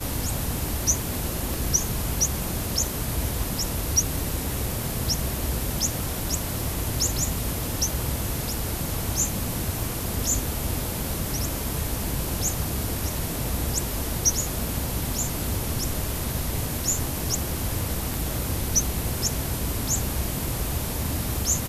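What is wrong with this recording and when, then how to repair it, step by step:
0:01.54: click
0:18.14: click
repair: click removal

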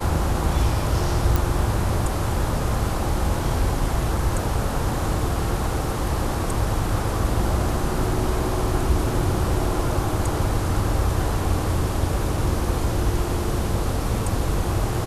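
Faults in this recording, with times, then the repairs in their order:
0:01.36: click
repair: click removal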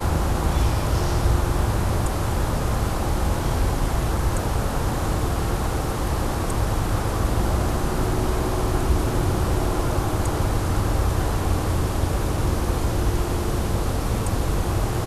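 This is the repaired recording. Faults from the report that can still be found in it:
none of them is left

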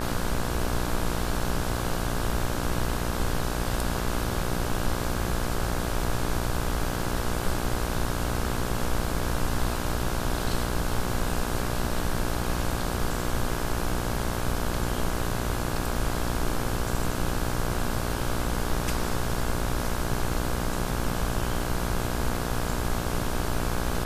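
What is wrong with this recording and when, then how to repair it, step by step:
mains buzz 60 Hz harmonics 28 −31 dBFS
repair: hum removal 60 Hz, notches 28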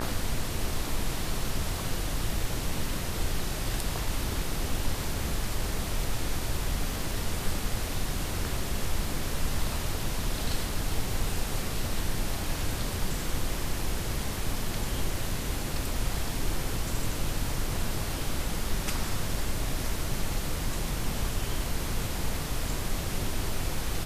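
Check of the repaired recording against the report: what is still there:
none of them is left

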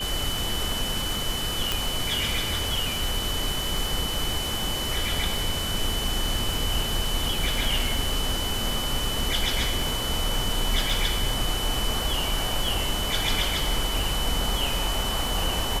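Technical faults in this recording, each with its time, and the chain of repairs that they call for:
surface crackle 43 per second −29 dBFS
whistle 3,000 Hz −30 dBFS
0:01.72: click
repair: click removal
notch filter 3,000 Hz, Q 30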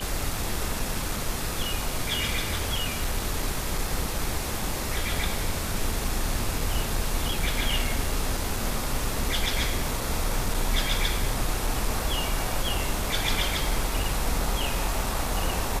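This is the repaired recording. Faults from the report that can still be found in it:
0:01.72: click

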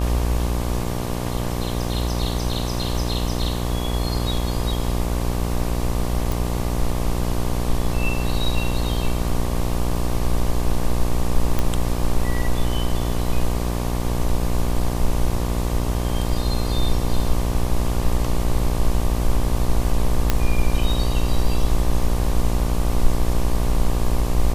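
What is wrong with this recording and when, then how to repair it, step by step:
mains buzz 60 Hz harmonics 20 −24 dBFS
0:06.32: click
0:11.59: click −7 dBFS
0:20.30: click −3 dBFS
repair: click removal
hum removal 60 Hz, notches 20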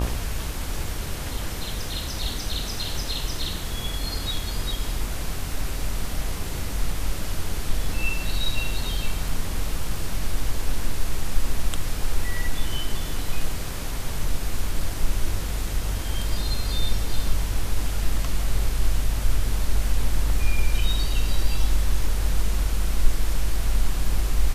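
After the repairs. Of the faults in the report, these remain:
none of them is left

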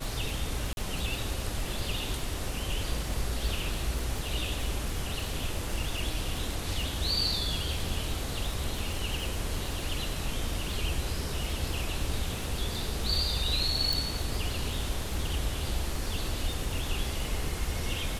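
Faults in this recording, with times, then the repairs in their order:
surface crackle 55 per second −34 dBFS
0:00.73–0:00.77: drop-out 41 ms
0:13.93: click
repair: click removal
repair the gap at 0:00.73, 41 ms

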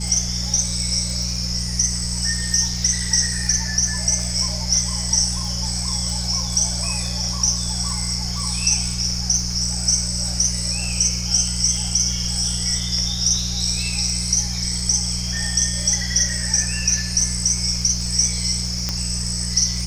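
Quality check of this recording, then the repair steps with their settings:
surface crackle 30 per second −27 dBFS
mains hum 60 Hz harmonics 3 −27 dBFS
0:18.89: click −8 dBFS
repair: click removal
hum removal 60 Hz, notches 3

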